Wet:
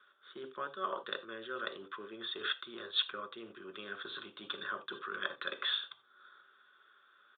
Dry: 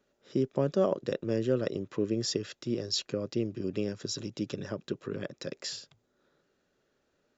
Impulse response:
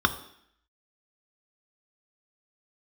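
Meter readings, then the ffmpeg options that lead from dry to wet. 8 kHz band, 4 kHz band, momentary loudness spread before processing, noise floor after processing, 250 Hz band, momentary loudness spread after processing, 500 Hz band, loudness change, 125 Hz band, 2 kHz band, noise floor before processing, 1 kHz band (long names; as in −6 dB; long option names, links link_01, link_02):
can't be measured, +2.0 dB, 9 LU, −66 dBFS, −19.0 dB, 14 LU, −14.0 dB, −6.5 dB, −28.5 dB, +7.5 dB, −76 dBFS, +3.5 dB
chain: -filter_complex "[1:a]atrim=start_sample=2205,atrim=end_sample=4410[link_01];[0:a][link_01]afir=irnorm=-1:irlink=0,areverse,acompressor=threshold=-24dB:ratio=6,areverse,highpass=1100,aresample=8000,aresample=44100"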